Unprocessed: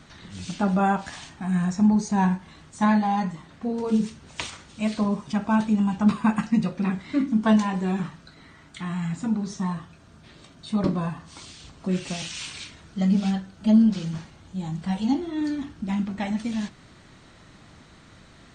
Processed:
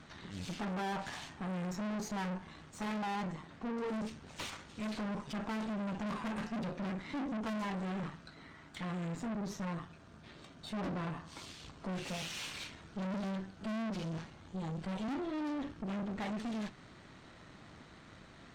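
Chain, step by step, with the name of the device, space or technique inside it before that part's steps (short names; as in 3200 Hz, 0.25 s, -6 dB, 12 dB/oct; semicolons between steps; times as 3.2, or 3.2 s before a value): tube preamp driven hard (tube stage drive 36 dB, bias 0.75; low shelf 160 Hz -5 dB; high shelf 4800 Hz -9 dB); gain +1.5 dB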